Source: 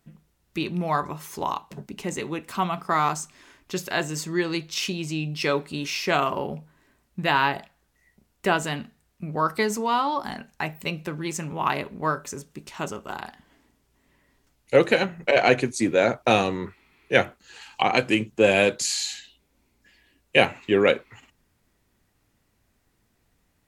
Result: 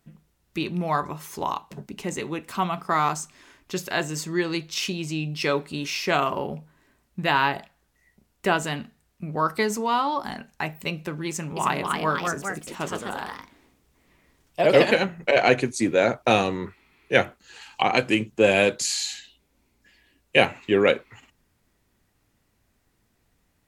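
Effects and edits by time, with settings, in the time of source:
11.28–15.26 s: ever faster or slower copies 283 ms, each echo +2 st, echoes 2

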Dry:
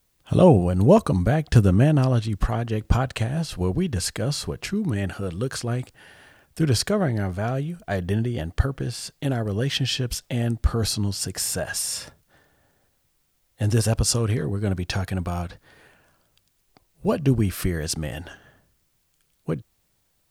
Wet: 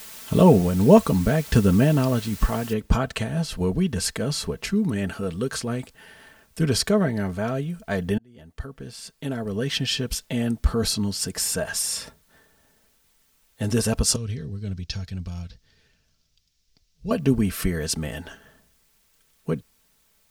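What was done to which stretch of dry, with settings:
2.73 s: noise floor step -42 dB -67 dB
8.18–9.94 s: fade in
14.16–17.11 s: FFT filter 110 Hz 0 dB, 210 Hz -10 dB, 310 Hz -13 dB, 610 Hz -16 dB, 1 kHz -20 dB, 5.5 kHz 0 dB, 9.1 kHz -17 dB
whole clip: band-stop 720 Hz, Q 12; comb 4.5 ms, depth 51%

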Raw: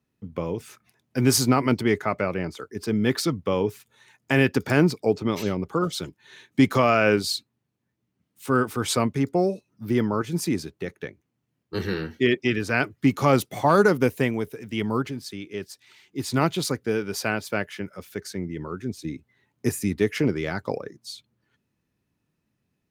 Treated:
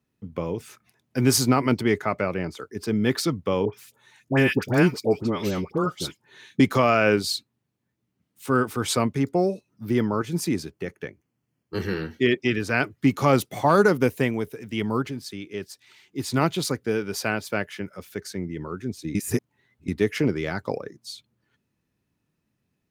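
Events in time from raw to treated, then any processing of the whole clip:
3.65–6.60 s: phase dispersion highs, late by 81 ms, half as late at 1.2 kHz
10.68–12.01 s: band-stop 3.8 kHz, Q 5.5
19.15–19.88 s: reverse

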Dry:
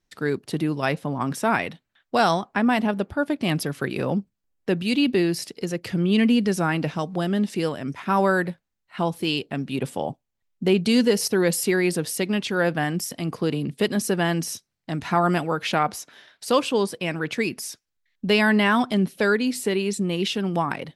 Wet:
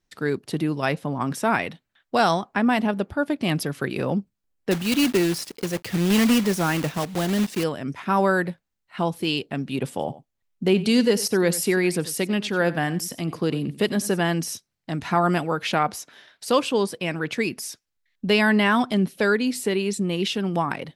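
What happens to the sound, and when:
4.71–7.64 s: block-companded coder 3-bit
9.90–14.21 s: delay 92 ms -17 dB

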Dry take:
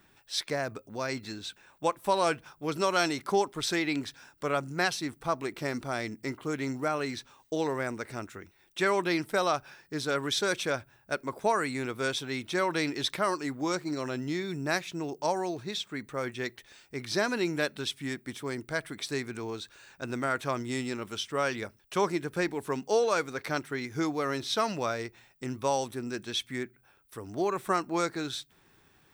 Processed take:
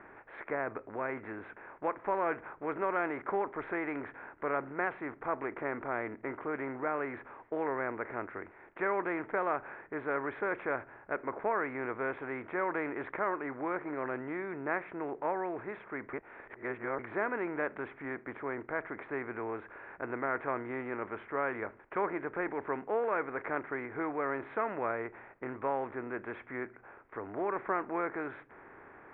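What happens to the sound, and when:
16.13–16.99 s: reverse
whole clip: spectral levelling over time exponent 0.6; steep low-pass 2.2 kHz 48 dB/octave; peaking EQ 160 Hz -9 dB 0.82 oct; trim -7.5 dB

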